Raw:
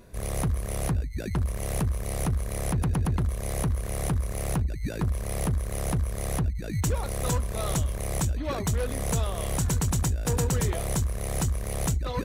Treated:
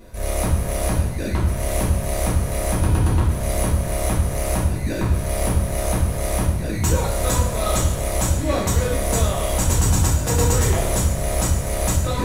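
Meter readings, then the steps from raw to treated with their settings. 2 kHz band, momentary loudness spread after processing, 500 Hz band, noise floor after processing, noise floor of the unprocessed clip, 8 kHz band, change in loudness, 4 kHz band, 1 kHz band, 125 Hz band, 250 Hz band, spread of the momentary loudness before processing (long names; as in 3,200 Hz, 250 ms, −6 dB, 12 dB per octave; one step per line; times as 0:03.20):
+9.0 dB, 4 LU, +9.5 dB, −25 dBFS, −34 dBFS, +9.0 dB, +7.5 dB, +9.0 dB, +9.0 dB, +6.5 dB, +6.5 dB, 4 LU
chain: coupled-rooms reverb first 0.59 s, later 3.2 s, from −15 dB, DRR −6.5 dB
level +1.5 dB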